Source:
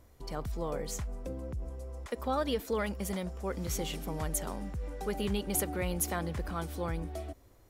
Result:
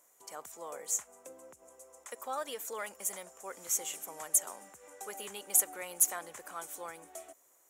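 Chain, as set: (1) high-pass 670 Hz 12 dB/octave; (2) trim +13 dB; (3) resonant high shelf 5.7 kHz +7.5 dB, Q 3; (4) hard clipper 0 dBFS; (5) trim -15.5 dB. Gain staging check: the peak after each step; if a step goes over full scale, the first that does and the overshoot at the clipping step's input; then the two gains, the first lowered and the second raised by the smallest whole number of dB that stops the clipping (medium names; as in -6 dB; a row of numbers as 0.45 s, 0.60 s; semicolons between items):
-17.0 dBFS, -4.0 dBFS, +6.5 dBFS, 0.0 dBFS, -15.5 dBFS; step 3, 6.5 dB; step 2 +6 dB, step 5 -8.5 dB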